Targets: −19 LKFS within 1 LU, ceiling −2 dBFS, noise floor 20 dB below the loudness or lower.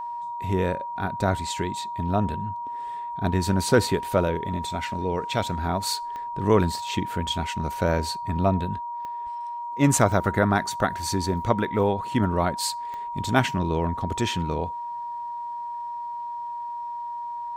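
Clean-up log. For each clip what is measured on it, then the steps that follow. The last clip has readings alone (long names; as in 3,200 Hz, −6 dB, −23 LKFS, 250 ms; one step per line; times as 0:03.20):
number of clicks 4; interfering tone 950 Hz; level of the tone −30 dBFS; integrated loudness −26.0 LKFS; sample peak −4.0 dBFS; target loudness −19.0 LKFS
→ click removal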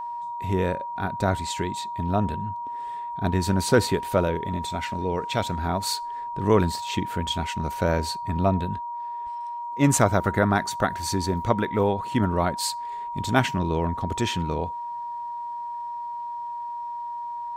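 number of clicks 0; interfering tone 950 Hz; level of the tone −30 dBFS
→ notch filter 950 Hz, Q 30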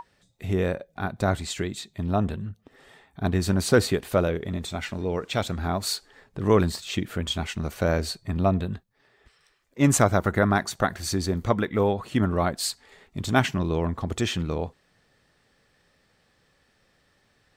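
interfering tone none found; integrated loudness −26.0 LKFS; sample peak −4.5 dBFS; target loudness −19.0 LKFS
→ level +7 dB
brickwall limiter −2 dBFS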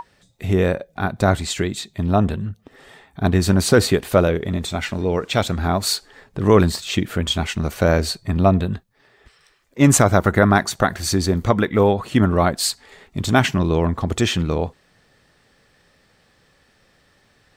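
integrated loudness −19.5 LKFS; sample peak −2.0 dBFS; background noise floor −59 dBFS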